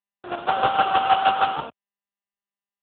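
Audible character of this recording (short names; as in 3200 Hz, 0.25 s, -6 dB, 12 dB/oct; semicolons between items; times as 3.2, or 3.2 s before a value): a quantiser's noise floor 6-bit, dither none; chopped level 6.4 Hz, depth 65%, duty 25%; aliases and images of a low sample rate 2100 Hz, jitter 20%; AMR-NB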